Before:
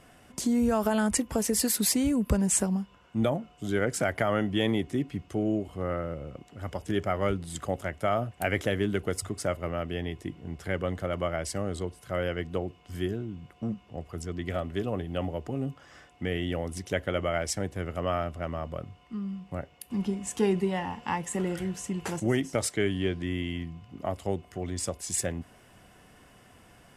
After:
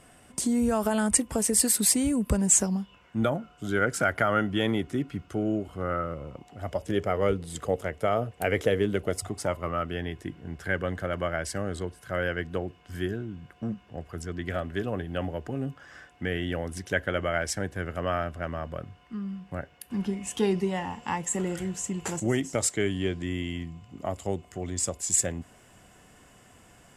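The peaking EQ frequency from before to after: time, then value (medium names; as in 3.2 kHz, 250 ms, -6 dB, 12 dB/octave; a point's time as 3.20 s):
peaking EQ +11 dB 0.27 oct
2.46 s 8.6 kHz
3.23 s 1.4 kHz
5.93 s 1.4 kHz
7.03 s 460 Hz
8.83 s 460 Hz
10.01 s 1.6 kHz
20.06 s 1.6 kHz
20.72 s 7.3 kHz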